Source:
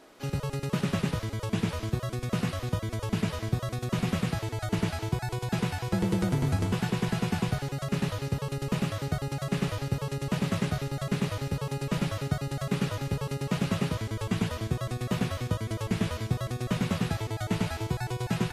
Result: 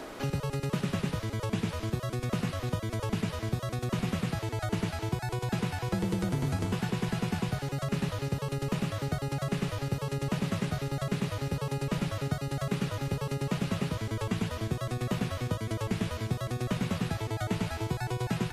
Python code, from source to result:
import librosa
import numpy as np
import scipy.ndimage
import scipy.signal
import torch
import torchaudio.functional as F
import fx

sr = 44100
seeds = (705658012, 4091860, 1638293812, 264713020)

y = fx.band_squash(x, sr, depth_pct=70)
y = F.gain(torch.from_numpy(y), -2.5).numpy()